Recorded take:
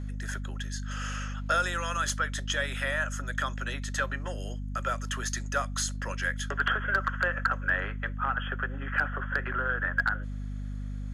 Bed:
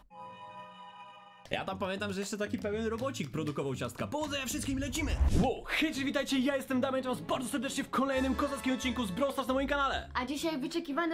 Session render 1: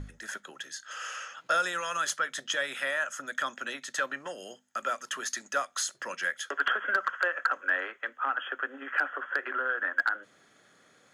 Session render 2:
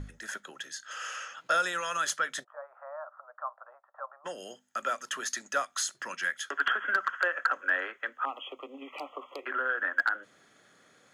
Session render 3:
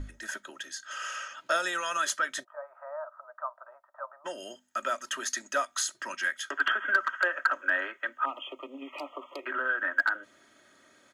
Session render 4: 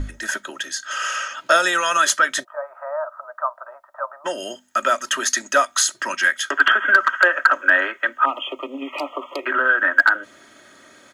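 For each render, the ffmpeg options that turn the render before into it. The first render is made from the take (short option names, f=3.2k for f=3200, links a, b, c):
-af "bandreject=f=50:t=h:w=6,bandreject=f=100:t=h:w=6,bandreject=f=150:t=h:w=6,bandreject=f=200:t=h:w=6,bandreject=f=250:t=h:w=6"
-filter_complex "[0:a]asplit=3[a][b][c];[a]afade=t=out:st=2.43:d=0.02[d];[b]asuperpass=centerf=860:order=8:qfactor=1.4,afade=t=in:st=2.43:d=0.02,afade=t=out:st=4.24:d=0.02[e];[c]afade=t=in:st=4.24:d=0.02[f];[d][e][f]amix=inputs=3:normalize=0,asettb=1/sr,asplit=3[g][h][i];[g]atrim=end=5.644[j];[h]atrim=start=5.64:end=7.21,asetpts=PTS-STARTPTS,afade=t=in:d=0.004:c=qsin,afade=t=out:st=1.566:d=0.004:c=qsin,equalizer=f=530:t=o:w=0.65:g=-6.5[k];[i]atrim=start=7.206[l];[j][k]acrossfade=d=0.004:c1=hsin:c2=qsin[m];[m][l]acrossfade=d=0.004:c1=qsin:c2=hsin,asettb=1/sr,asplit=3[n][o][p];[n]atrim=end=8.254[q];[o]atrim=start=8.25:end=9.46,asetpts=PTS-STARTPTS,afade=t=in:d=0.004:c=qsin,afade=t=out:st=1.206:d=0.004:c=qsin,asuperstop=centerf=1600:order=8:qfactor=1.6[r];[p]atrim=start=9.456[s];[q][r]acrossfade=d=0.004:c1=hsin:c2=qsin[t];[t][s]acrossfade=d=0.004:c1=qsin:c2=hsin"
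-af "aecho=1:1:3.2:0.58"
-af "volume=12dB,alimiter=limit=-2dB:level=0:latency=1"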